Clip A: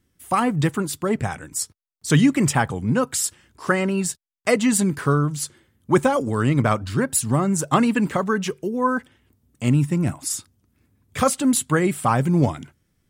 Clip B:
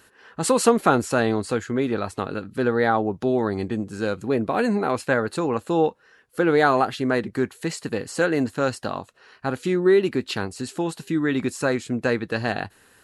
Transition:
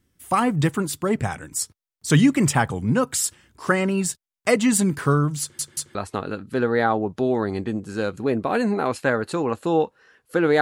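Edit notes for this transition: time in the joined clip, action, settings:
clip A
5.41 s: stutter in place 0.18 s, 3 plays
5.95 s: go over to clip B from 1.99 s

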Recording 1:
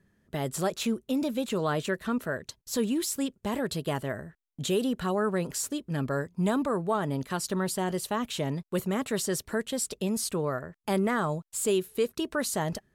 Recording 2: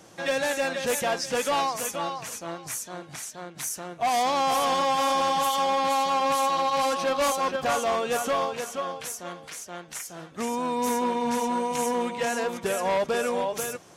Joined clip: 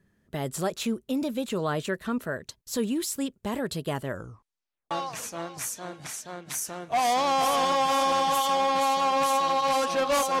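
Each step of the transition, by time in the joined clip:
recording 1
4.07 s: tape stop 0.84 s
4.91 s: go over to recording 2 from 2.00 s

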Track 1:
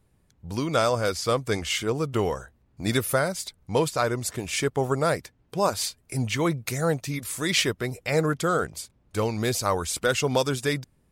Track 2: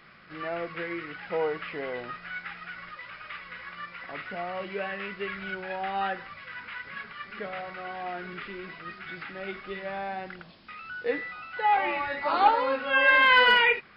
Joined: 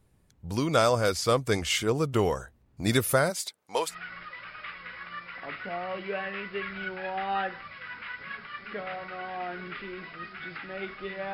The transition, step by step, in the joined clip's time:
track 1
3.29–3.95 s: high-pass 260 Hz -> 890 Hz
3.90 s: go over to track 2 from 2.56 s, crossfade 0.10 s

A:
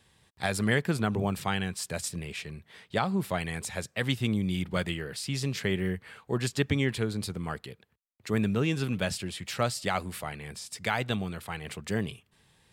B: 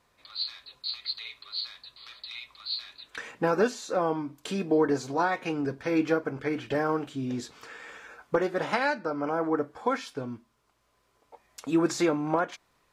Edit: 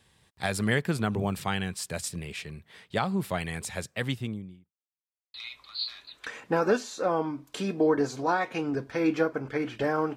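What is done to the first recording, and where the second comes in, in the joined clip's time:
A
3.88–4.72 s: studio fade out
4.72–5.34 s: mute
5.34 s: go over to B from 2.25 s

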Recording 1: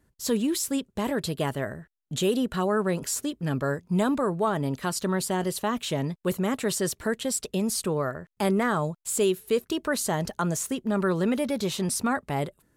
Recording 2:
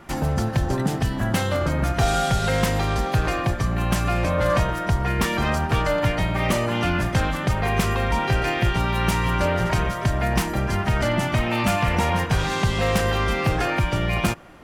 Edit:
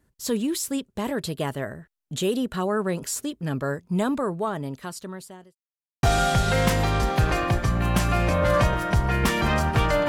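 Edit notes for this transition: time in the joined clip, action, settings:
recording 1
4.18–5.55 s: fade out linear
5.55–6.03 s: mute
6.03 s: go over to recording 2 from 1.99 s

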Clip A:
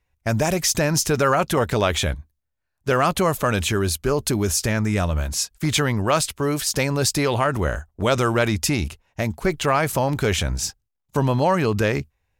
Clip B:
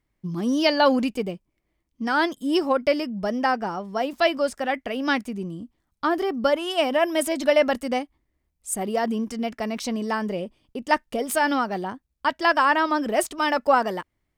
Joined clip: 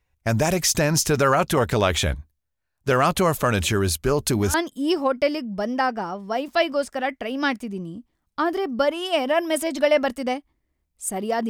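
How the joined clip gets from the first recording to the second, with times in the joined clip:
clip A
3.64 s: add clip B from 1.29 s 0.90 s -14.5 dB
4.54 s: go over to clip B from 2.19 s

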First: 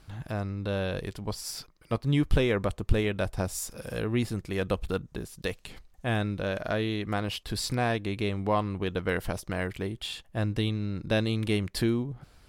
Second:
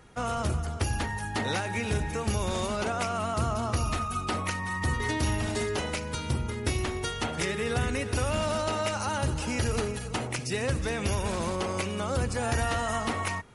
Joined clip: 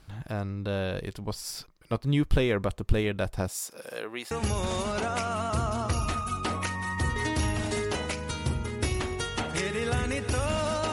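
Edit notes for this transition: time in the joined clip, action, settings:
first
3.48–4.31 s: high-pass 220 Hz -> 730 Hz
4.31 s: go over to second from 2.15 s

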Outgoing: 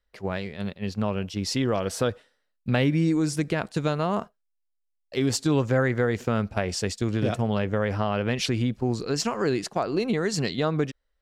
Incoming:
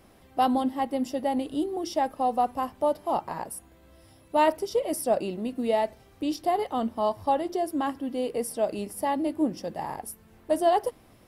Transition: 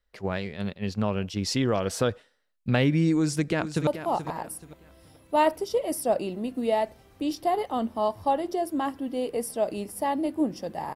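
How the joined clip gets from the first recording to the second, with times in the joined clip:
outgoing
3.07–3.87 s: echo throw 430 ms, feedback 30%, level -11 dB
3.87 s: go over to incoming from 2.88 s

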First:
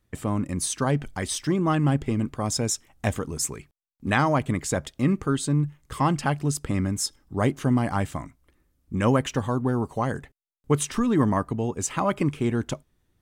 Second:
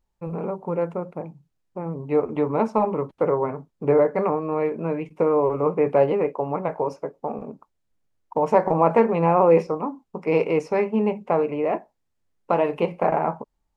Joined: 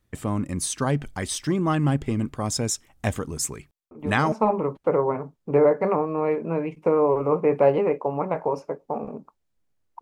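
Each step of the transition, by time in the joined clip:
first
3.91 s: add second from 2.25 s 0.41 s -11 dB
4.32 s: go over to second from 2.66 s

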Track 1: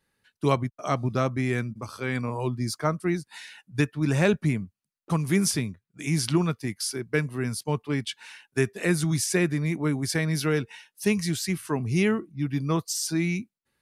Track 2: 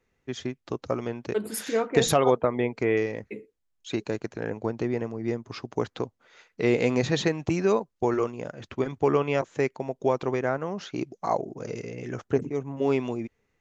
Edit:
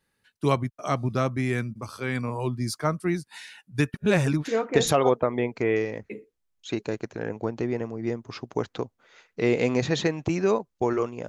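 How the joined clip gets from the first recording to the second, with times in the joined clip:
track 1
3.94–4.45 s: reverse
4.45 s: go over to track 2 from 1.66 s

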